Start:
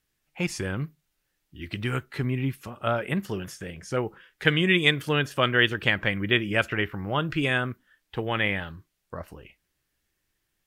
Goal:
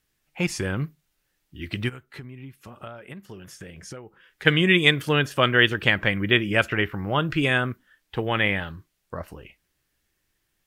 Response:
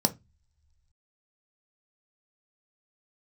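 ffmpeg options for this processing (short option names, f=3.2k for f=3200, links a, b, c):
-filter_complex "[0:a]asplit=3[a][b][c];[a]afade=t=out:st=1.88:d=0.02[d];[b]acompressor=threshold=-40dB:ratio=12,afade=t=in:st=1.88:d=0.02,afade=t=out:st=4.45:d=0.02[e];[c]afade=t=in:st=4.45:d=0.02[f];[d][e][f]amix=inputs=3:normalize=0,volume=3dB"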